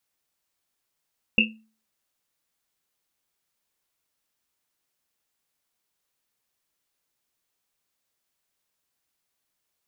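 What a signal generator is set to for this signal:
drum after Risset, pitch 220 Hz, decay 0.40 s, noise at 2,700 Hz, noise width 190 Hz, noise 65%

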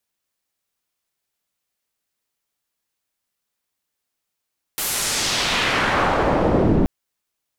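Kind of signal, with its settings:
filter sweep on noise white, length 2.08 s lowpass, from 15,000 Hz, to 240 Hz, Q 1.1, exponential, gain ramp +25.5 dB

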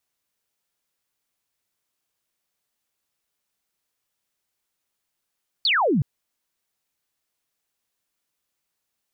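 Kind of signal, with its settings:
single falling chirp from 4,700 Hz, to 120 Hz, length 0.37 s sine, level −17 dB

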